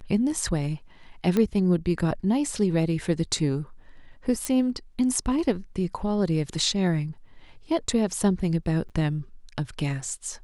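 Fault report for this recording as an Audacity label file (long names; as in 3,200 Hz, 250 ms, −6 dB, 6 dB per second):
1.370000	1.370000	click −12 dBFS
4.450000	4.450000	click −13 dBFS
8.890000	8.900000	drop-out 7.8 ms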